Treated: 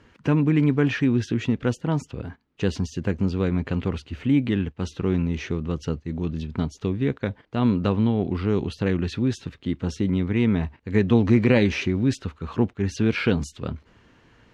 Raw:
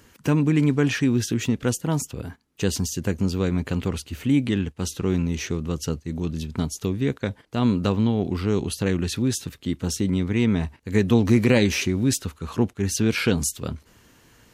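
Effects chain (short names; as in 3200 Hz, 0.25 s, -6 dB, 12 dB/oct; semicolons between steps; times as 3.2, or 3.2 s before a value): LPF 3100 Hz 12 dB/oct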